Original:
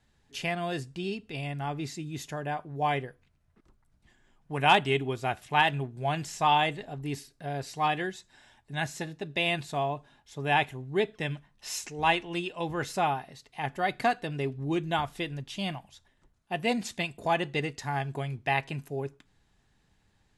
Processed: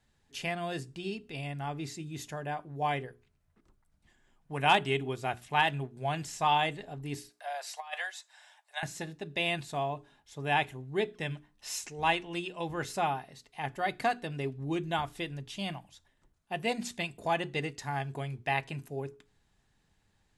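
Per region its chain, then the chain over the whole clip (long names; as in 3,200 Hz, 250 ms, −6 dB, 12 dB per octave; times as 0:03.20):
0:07.29–0:08.83: Butterworth high-pass 600 Hz 48 dB per octave + compressor whose output falls as the input rises −32 dBFS, ratio −0.5
whole clip: parametric band 9,000 Hz +2.5 dB 0.85 octaves; mains-hum notches 60/120/180/240/300/360/420 Hz; level −3 dB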